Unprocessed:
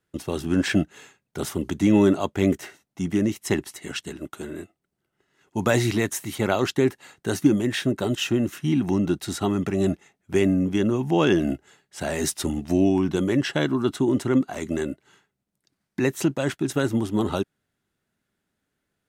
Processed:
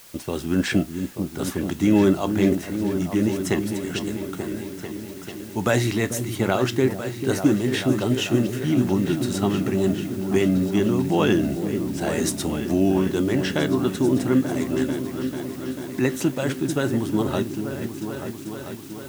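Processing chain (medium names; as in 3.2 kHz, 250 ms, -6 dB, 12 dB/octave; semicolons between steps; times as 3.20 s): feedback comb 63 Hz, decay 0.21 s, harmonics all, mix 50%; on a send: delay with an opening low-pass 442 ms, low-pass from 400 Hz, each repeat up 2 oct, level -6 dB; on the sum: added noise white -50 dBFS; trim +3 dB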